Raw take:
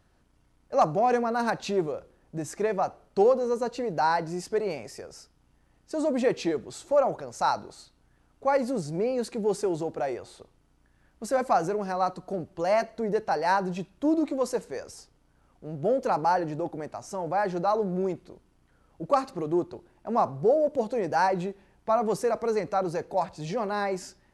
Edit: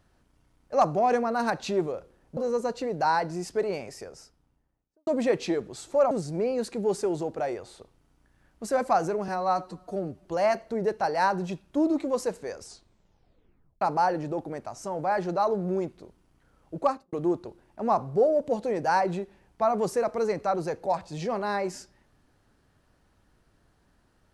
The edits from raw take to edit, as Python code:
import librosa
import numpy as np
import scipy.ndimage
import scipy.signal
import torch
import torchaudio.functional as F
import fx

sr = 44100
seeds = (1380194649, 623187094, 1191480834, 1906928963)

y = fx.studio_fade_out(x, sr, start_s=4.96, length_s=1.08)
y = fx.studio_fade_out(y, sr, start_s=19.07, length_s=0.33)
y = fx.edit(y, sr, fx.cut(start_s=2.37, length_s=0.97),
    fx.cut(start_s=7.08, length_s=1.63),
    fx.stretch_span(start_s=11.88, length_s=0.65, factor=1.5),
    fx.tape_stop(start_s=14.9, length_s=1.19), tone=tone)